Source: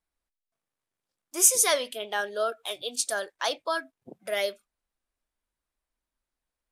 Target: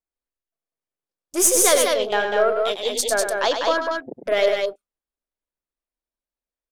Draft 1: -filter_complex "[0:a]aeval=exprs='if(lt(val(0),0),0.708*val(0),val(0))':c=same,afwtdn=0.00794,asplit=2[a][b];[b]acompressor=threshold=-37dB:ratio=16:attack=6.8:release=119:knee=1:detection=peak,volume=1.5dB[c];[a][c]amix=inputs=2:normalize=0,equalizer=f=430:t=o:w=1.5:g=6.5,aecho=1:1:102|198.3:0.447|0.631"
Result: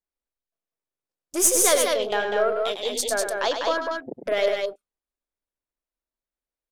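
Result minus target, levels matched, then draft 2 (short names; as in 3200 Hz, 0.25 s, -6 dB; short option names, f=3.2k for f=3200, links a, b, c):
compressor: peak gain reduction +11 dB
-filter_complex "[0:a]aeval=exprs='if(lt(val(0),0),0.708*val(0),val(0))':c=same,afwtdn=0.00794,asplit=2[a][b];[b]acompressor=threshold=-25.5dB:ratio=16:attack=6.8:release=119:knee=1:detection=peak,volume=1.5dB[c];[a][c]amix=inputs=2:normalize=0,equalizer=f=430:t=o:w=1.5:g=6.5,aecho=1:1:102|198.3:0.447|0.631"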